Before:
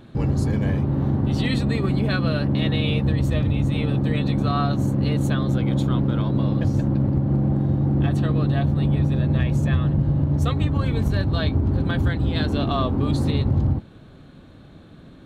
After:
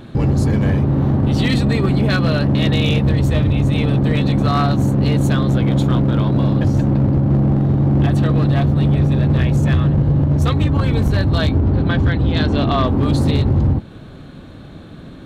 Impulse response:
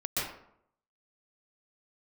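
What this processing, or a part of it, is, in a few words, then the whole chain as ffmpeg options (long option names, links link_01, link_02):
clipper into limiter: -filter_complex "[0:a]asoftclip=type=hard:threshold=-16.5dB,alimiter=limit=-19dB:level=0:latency=1:release=152,asettb=1/sr,asplit=3[link_01][link_02][link_03];[link_01]atrim=end=11.584[link_04];[link_02]atrim=start=11.58:end=12.88,asetpts=PTS-STARTPTS,afade=type=in:duration=0.004:curve=qsin,afade=type=out:start_time=1.296:duration=0.004:curve=qsin,lowpass=5100[link_05];[link_03]atrim=start=12.876[link_06];[link_04][link_05]acrossfade=duration=0.004:curve1=hsin:curve2=qsin[link_07];[link_07][link_06]acrossfade=duration=0.004:curve1=qsin:curve2=hsin,volume=9dB"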